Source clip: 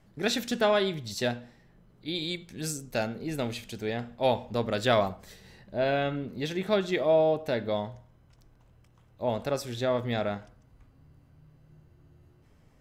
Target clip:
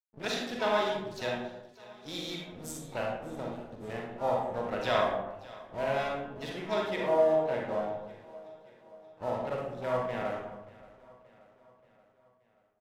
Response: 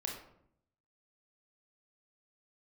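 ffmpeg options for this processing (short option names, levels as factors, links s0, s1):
-filter_complex "[0:a]afwtdn=0.01,lowshelf=f=160:g=9.5,acrossover=split=460[s0][s1];[s0]acompressor=threshold=0.0112:ratio=4[s2];[s2][s1]amix=inputs=2:normalize=0,aeval=exprs='sgn(val(0))*max(abs(val(0))-0.00668,0)':c=same,asplit=2[s3][s4];[s4]asetrate=66075,aresample=44100,atempo=0.66742,volume=0.282[s5];[s3][s5]amix=inputs=2:normalize=0,aecho=1:1:579|1158|1737|2316:0.0944|0.0529|0.0296|0.0166[s6];[1:a]atrim=start_sample=2205,afade=t=out:st=0.33:d=0.01,atrim=end_sample=14994,asetrate=28665,aresample=44100[s7];[s6][s7]afir=irnorm=-1:irlink=0,adynamicequalizer=threshold=0.00562:dfrequency=3800:dqfactor=0.7:tfrequency=3800:tqfactor=0.7:attack=5:release=100:ratio=0.375:range=2.5:mode=cutabove:tftype=highshelf,volume=0.596"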